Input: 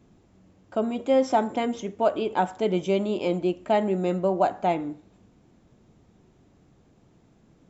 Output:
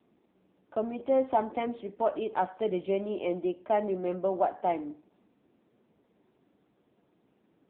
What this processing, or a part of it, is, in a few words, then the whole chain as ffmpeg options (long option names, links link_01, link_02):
telephone: -filter_complex "[0:a]asettb=1/sr,asplit=3[link_01][link_02][link_03];[link_01]atrim=end=2.344[link_04];[link_02]atrim=start=2.34:end=3.28,asetpts=PTS-STARTPTS,afade=type=in:duration=0.004:curve=qsin,afade=type=out:start_time=0.936:duration=0.004:curve=qsin,lowpass=6200[link_05];[link_03]atrim=start=3.276[link_06];[link_04][link_05]acrossfade=duration=0.004:curve1=hsin:curve2=qsin[link_07];[link_07][link_06]acrossfade=duration=0.004:curve1=qsin:curve2=hsin,highpass=260,lowpass=3100,volume=-3.5dB" -ar 8000 -c:a libopencore_amrnb -b:a 6700